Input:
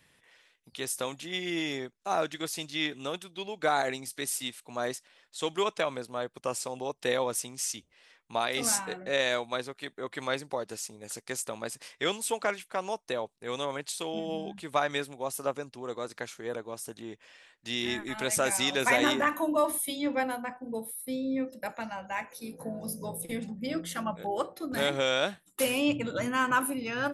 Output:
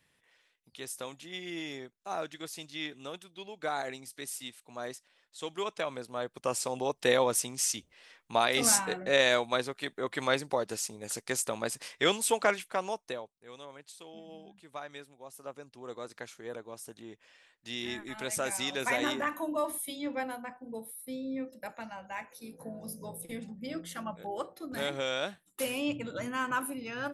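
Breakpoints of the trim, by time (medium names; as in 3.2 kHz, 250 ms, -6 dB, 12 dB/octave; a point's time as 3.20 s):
5.51 s -7 dB
6.76 s +3 dB
12.58 s +3 dB
13.11 s -4 dB
13.34 s -14.5 dB
15.31 s -14.5 dB
15.89 s -5.5 dB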